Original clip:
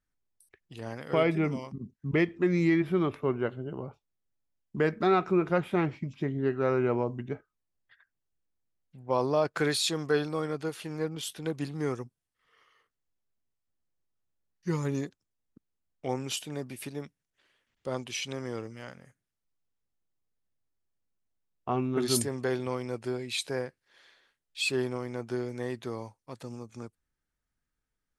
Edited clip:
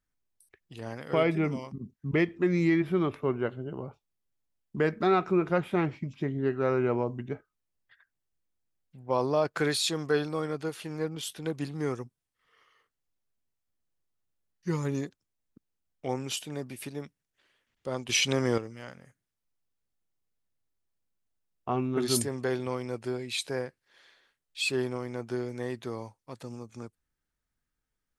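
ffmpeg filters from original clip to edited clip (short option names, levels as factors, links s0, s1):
-filter_complex "[0:a]asplit=3[s0][s1][s2];[s0]atrim=end=18.092[s3];[s1]atrim=start=18.088:end=18.582,asetpts=PTS-STARTPTS,volume=2.99[s4];[s2]atrim=start=18.578[s5];[s3][s4]acrossfade=d=0.004:c1=hsin:c2=hsin[s6];[s6][s5]acrossfade=d=0.004:c1=hsin:c2=hsin"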